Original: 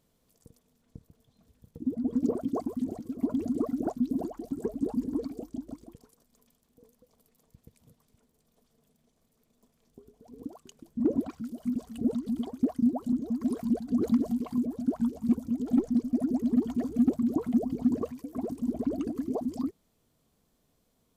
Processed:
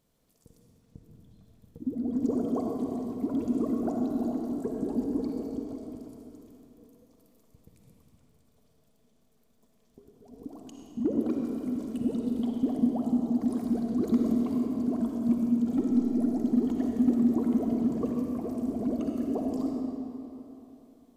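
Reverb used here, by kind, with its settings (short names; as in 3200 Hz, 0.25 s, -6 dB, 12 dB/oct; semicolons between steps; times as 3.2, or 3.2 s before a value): digital reverb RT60 3.2 s, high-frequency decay 0.75×, pre-delay 20 ms, DRR -0.5 dB; gain -2 dB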